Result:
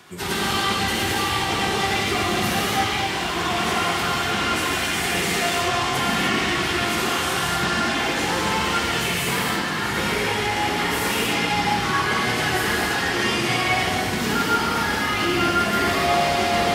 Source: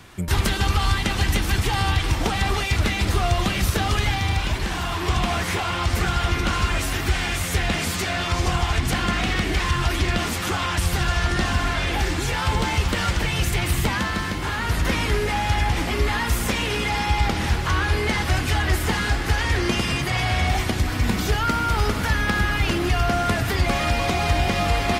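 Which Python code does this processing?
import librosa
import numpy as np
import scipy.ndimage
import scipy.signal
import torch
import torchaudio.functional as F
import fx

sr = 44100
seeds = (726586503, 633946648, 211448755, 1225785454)

y = fx.stretch_vocoder_free(x, sr, factor=0.67)
y = scipy.signal.sosfilt(scipy.signal.butter(2, 200.0, 'highpass', fs=sr, output='sos'), y)
y = fx.rev_gated(y, sr, seeds[0], gate_ms=330, shape='flat', drr_db=-5.5)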